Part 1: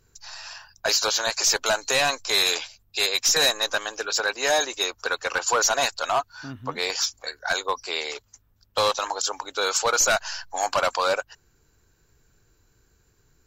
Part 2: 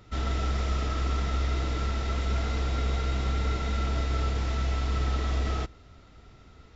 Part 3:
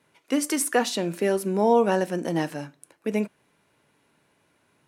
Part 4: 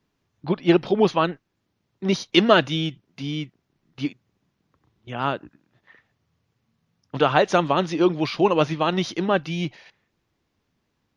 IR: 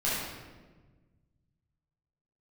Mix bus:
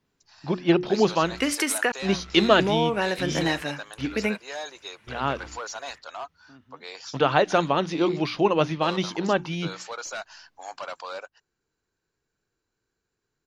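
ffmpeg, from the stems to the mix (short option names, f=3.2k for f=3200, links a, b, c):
-filter_complex "[0:a]acrossover=split=160 6600:gain=0.251 1 0.1[a][b][c];[a][b][c]amix=inputs=3:normalize=0,adelay=50,volume=-13dB[d];[1:a]asoftclip=type=tanh:threshold=-27.5dB,adelay=1100,volume=-15dB[e];[2:a]adelay=1100,volume=0dB,asplit=3[f][g][h];[f]atrim=end=1.92,asetpts=PTS-STARTPTS,afade=t=out:st=1.916:d=0.004:c=hsin[i];[g]atrim=start=1.92:end=2.59,asetpts=PTS-STARTPTS,volume=0[j];[h]atrim=start=2.59,asetpts=PTS-STARTPTS,afade=t=in:d=0.004:c=hsin[k];[i][j][k]concat=n=3:v=0:a=1[l];[3:a]bandreject=f=60:t=h:w=6,bandreject=f=120:t=h:w=6,bandreject=f=180:t=h:w=6,bandreject=f=240:t=h:w=6,bandreject=f=300:t=h:w=6,bandreject=f=360:t=h:w=6,volume=-2dB,asplit=2[m][n];[n]apad=whole_len=346461[o];[e][o]sidechaingate=range=-33dB:threshold=-50dB:ratio=16:detection=peak[p];[p][l]amix=inputs=2:normalize=0,equalizer=f=2.2k:t=o:w=1.9:g=11,acompressor=threshold=-20dB:ratio=6,volume=0dB[q];[d][m][q]amix=inputs=3:normalize=0"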